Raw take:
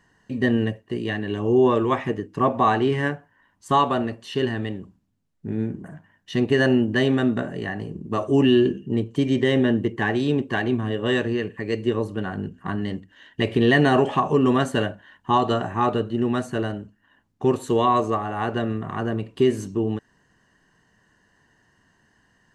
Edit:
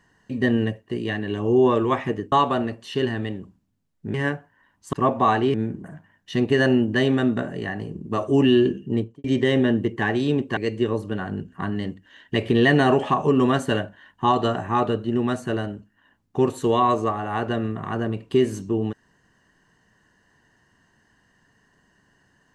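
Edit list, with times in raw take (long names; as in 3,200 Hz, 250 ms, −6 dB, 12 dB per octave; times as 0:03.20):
0:02.32–0:02.93: swap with 0:03.72–0:05.54
0:08.96–0:09.24: fade out and dull
0:10.57–0:11.63: remove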